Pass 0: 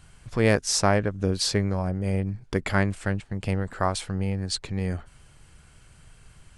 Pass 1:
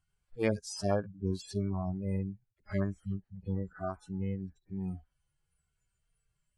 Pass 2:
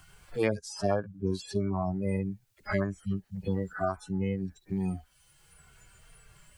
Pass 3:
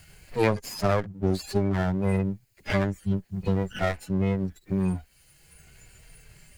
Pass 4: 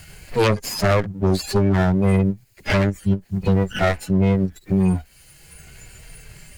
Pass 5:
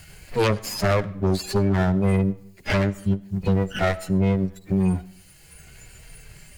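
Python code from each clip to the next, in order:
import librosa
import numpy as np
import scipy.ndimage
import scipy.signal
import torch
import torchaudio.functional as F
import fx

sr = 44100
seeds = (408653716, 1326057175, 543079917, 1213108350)

y1 = fx.hpss_only(x, sr, part='harmonic')
y1 = fx.noise_reduce_blind(y1, sr, reduce_db=21)
y1 = F.gain(torch.from_numpy(y1), -5.0).numpy()
y2 = fx.low_shelf(y1, sr, hz=280.0, db=-8.0)
y2 = fx.band_squash(y2, sr, depth_pct=70)
y2 = F.gain(torch.from_numpy(y2), 8.0).numpy()
y3 = fx.lower_of_two(y2, sr, delay_ms=0.44)
y3 = F.gain(torch.from_numpy(y3), 6.0).numpy()
y4 = fx.fold_sine(y3, sr, drive_db=9, ceiling_db=-8.0)
y4 = fx.end_taper(y4, sr, db_per_s=340.0)
y4 = F.gain(torch.from_numpy(y4), -3.5).numpy()
y5 = fx.rev_freeverb(y4, sr, rt60_s=0.73, hf_ratio=0.7, predelay_ms=40, drr_db=19.5)
y5 = F.gain(torch.from_numpy(y5), -3.0).numpy()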